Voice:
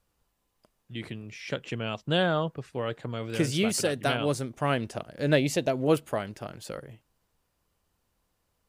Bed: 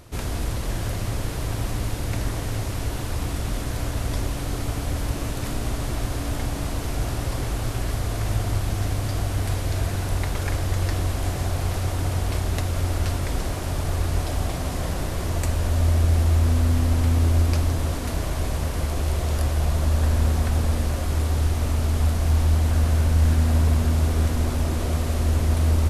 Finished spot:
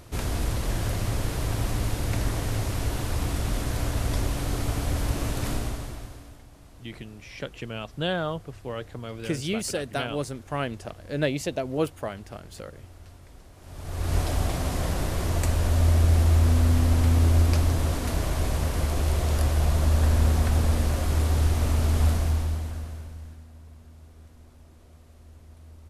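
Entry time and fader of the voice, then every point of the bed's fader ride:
5.90 s, −2.5 dB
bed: 0:05.54 −0.5 dB
0:06.45 −23.5 dB
0:13.53 −23.5 dB
0:14.14 −0.5 dB
0:22.12 −0.5 dB
0:23.50 −28.5 dB

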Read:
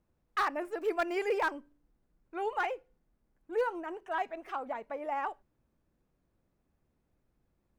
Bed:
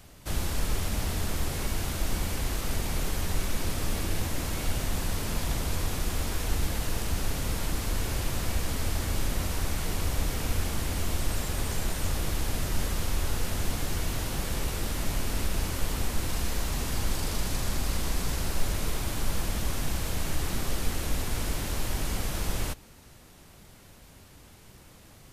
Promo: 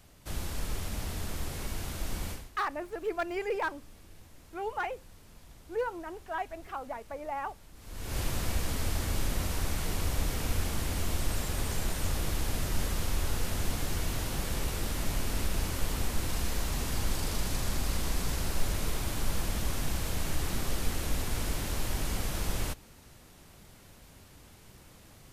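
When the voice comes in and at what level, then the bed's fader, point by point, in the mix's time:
2.20 s, −1.5 dB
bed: 0:02.31 −6 dB
0:02.52 −24 dB
0:07.73 −24 dB
0:08.18 −2 dB

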